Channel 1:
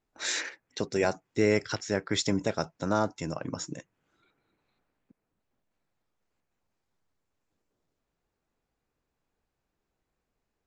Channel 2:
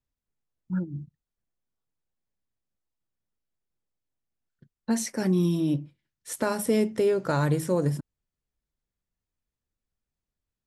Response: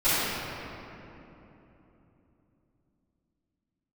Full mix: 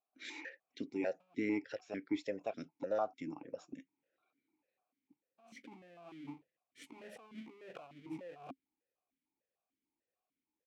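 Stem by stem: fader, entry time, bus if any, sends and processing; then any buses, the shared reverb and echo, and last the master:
+1.0 dB, 0.00 s, no send, no processing
−8.0 dB, 0.50 s, no send, each half-wave held at its own peak; compressor whose output falls as the input rises −30 dBFS, ratio −1; automatic ducking −19 dB, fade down 1.30 s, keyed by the first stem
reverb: not used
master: formant filter that steps through the vowels 6.7 Hz

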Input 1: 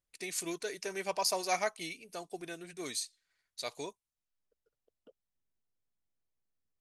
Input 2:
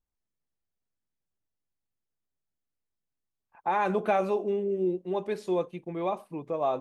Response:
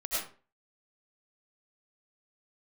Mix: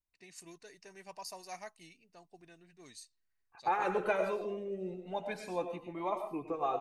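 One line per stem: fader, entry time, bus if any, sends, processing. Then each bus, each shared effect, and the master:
−14.5 dB, 0.00 s, no send, low-pass that shuts in the quiet parts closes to 2,900 Hz, open at −31 dBFS; low-shelf EQ 180 Hz +7.5 dB; comb filter 1.1 ms, depth 32%
−2.5 dB, 0.00 s, send −9.5 dB, harmonic and percussive parts rebalanced harmonic −8 dB; automatic gain control gain up to 4.5 dB; flanger whose copies keep moving one way rising 0.33 Hz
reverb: on, RT60 0.40 s, pre-delay 60 ms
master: notch filter 3,400 Hz, Q 10

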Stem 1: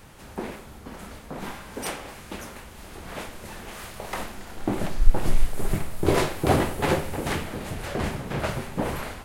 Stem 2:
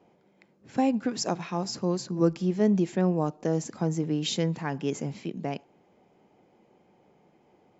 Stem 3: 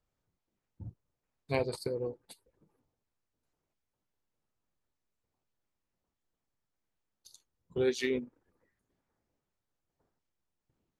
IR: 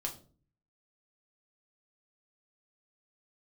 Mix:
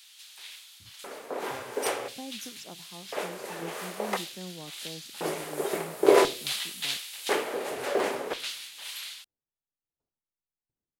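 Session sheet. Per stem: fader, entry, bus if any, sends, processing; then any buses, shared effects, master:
−1.5 dB, 0.00 s, send −9 dB, low-shelf EQ 180 Hz −10 dB; mains hum 50 Hz, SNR 19 dB; auto-filter high-pass square 0.48 Hz 430–3,600 Hz
−17.5 dB, 1.40 s, no send, no processing
−14.5 dB, 0.00 s, no send, short delay modulated by noise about 4,600 Hz, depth 0.054 ms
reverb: on, RT60 0.40 s, pre-delay 5 ms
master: no processing

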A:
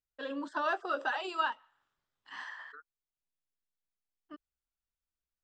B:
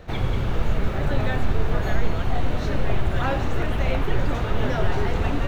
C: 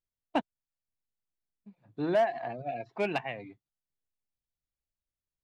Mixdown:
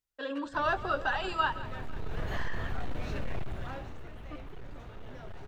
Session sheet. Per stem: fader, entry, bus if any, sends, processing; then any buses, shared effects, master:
+2.5 dB, 0.00 s, no send, echo send −15.5 dB, no processing
0:01.54 −19 dB → 0:02.25 −10.5 dB → 0:03.35 −10.5 dB → 0:04.08 −21.5 dB, 0.45 s, no send, no echo send, gain into a clipping stage and back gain 16 dB
−16.0 dB, 0.00 s, no send, no echo send, Butterworth high-pass 1,200 Hz; leveller curve on the samples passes 1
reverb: not used
echo: repeating echo 166 ms, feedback 58%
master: no processing

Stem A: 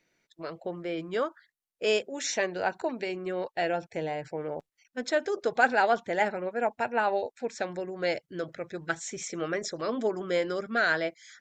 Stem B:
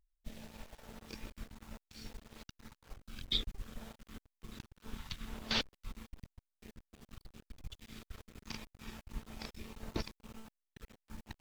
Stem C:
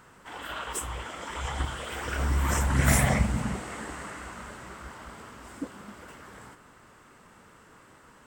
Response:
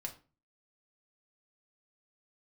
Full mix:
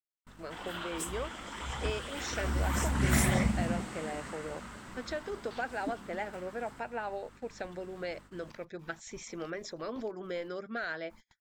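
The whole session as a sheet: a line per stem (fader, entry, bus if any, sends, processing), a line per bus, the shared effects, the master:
−5.0 dB, 0.00 s, no send, low-pass filter 5,800 Hz; downward compressor 2.5 to 1, threshold −31 dBFS, peak gain reduction 10 dB
−19.5 dB, 0.00 s, send −8.5 dB, parametric band 1,000 Hz +11 dB 0.87 octaves; speech leveller within 4 dB 0.5 s
−1.0 dB, 0.25 s, send −16 dB, mains hum 50 Hz, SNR 22 dB; graphic EQ with 10 bands 250 Hz +5 dB, 500 Hz −3 dB, 4,000 Hz +4 dB; automatic ducking −6 dB, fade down 0.90 s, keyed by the first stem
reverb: on, RT60 0.35 s, pre-delay 4 ms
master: noise gate −51 dBFS, range −34 dB

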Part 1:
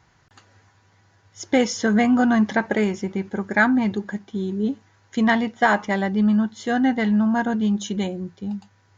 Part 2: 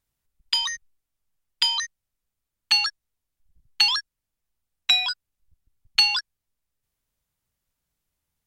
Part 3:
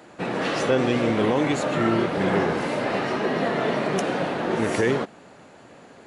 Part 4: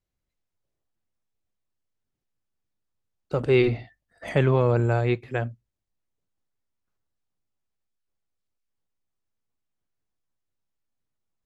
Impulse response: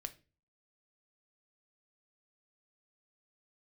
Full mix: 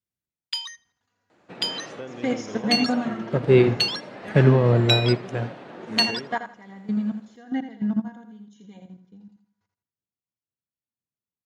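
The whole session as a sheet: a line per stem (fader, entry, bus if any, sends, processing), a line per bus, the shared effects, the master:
−4.5 dB, 0.70 s, no send, echo send −7 dB, comb filter 4.2 ms, depth 58%; output level in coarse steps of 15 dB; automatic ducking −12 dB, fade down 0.40 s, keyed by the fourth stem
−1.0 dB, 0.00 s, no send, echo send −23 dB, high-pass filter 970 Hz 12 dB per octave
−1.0 dB, 1.30 s, no send, no echo send, low-pass filter 6,900 Hz 12 dB per octave; downward compressor 2 to 1, threshold −30 dBFS, peak gain reduction 8 dB
−1.0 dB, 0.00 s, no send, echo send −14.5 dB, parametric band 180 Hz +8.5 dB 2.6 octaves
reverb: not used
echo: repeating echo 82 ms, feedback 36%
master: high-pass filter 68 Hz; expander for the loud parts 1.5 to 1, over −37 dBFS

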